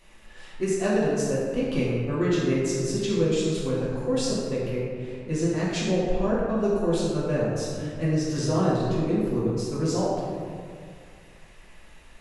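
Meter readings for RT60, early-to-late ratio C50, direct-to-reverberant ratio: 2.1 s, -1.5 dB, -8.5 dB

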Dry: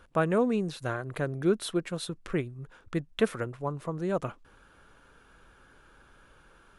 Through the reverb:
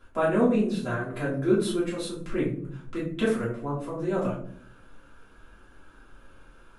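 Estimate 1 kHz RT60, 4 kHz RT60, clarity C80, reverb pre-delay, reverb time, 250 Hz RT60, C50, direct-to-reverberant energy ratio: 0.45 s, 0.30 s, 10.0 dB, 3 ms, 0.60 s, 0.95 s, 5.0 dB, -9.0 dB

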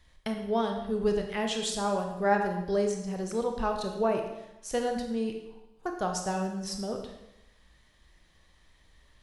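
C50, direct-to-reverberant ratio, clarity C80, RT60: 5.5 dB, 3.0 dB, 8.0 dB, 0.90 s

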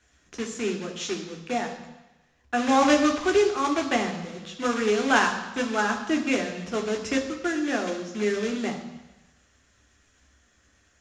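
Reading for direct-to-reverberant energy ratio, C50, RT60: 3.0 dB, 8.5 dB, 1.0 s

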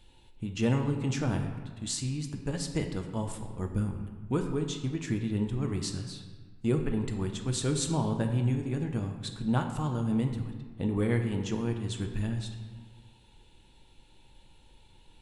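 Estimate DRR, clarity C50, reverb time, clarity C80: 4.0 dB, 7.0 dB, 1.4 s, 8.5 dB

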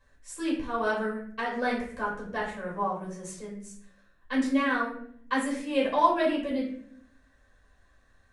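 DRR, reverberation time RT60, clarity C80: -6.0 dB, 0.60 s, 8.5 dB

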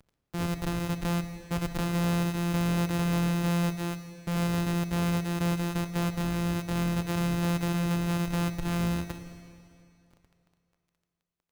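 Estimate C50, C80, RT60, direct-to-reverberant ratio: 8.0 dB, 9.0 dB, 2.5 s, 7.5 dB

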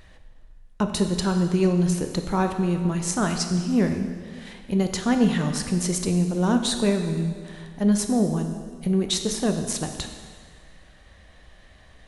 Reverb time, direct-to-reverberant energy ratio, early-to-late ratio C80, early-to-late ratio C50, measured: 1.8 s, 5.0 dB, 8.0 dB, 6.5 dB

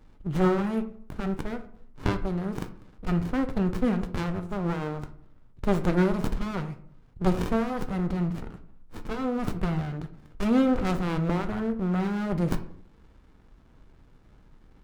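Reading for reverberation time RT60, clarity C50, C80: 0.60 s, 13.0 dB, 16.5 dB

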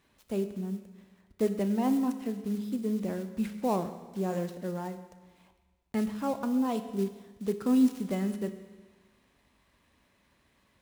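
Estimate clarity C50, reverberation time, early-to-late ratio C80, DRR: 10.5 dB, 1.3 s, 11.5 dB, 9.0 dB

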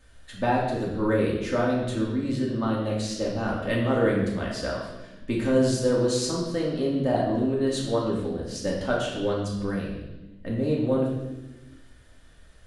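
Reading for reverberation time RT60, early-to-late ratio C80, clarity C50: 1.0 s, 5.0 dB, 2.5 dB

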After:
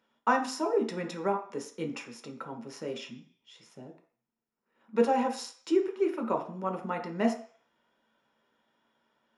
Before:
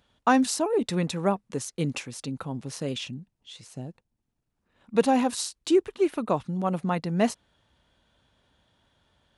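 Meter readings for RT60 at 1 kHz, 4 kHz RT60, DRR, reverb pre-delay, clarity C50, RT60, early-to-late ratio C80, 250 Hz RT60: 0.55 s, 0.55 s, 2.5 dB, 3 ms, 9.0 dB, 0.50 s, 13.5 dB, 0.35 s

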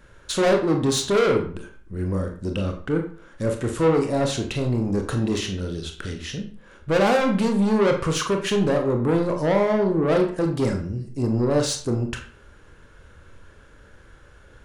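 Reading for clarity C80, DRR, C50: 12.0 dB, 3.0 dB, 8.5 dB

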